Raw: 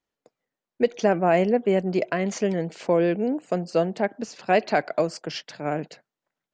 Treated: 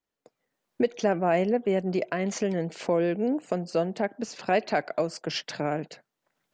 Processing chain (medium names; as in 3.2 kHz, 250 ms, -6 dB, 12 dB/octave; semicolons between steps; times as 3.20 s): recorder AGC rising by 19 dB/s; trim -4 dB